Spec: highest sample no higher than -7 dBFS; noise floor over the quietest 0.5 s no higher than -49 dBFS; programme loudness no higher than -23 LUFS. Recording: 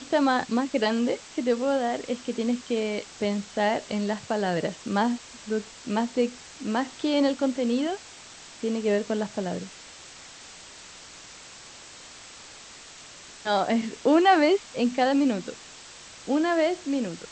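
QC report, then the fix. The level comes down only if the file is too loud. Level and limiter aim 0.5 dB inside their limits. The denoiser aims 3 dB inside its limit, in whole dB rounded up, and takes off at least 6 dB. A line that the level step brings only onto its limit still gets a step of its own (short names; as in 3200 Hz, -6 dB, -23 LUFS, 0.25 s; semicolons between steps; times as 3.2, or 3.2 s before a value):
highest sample -9.0 dBFS: OK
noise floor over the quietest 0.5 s -46 dBFS: fail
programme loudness -26.0 LUFS: OK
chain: denoiser 6 dB, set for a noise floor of -46 dBFS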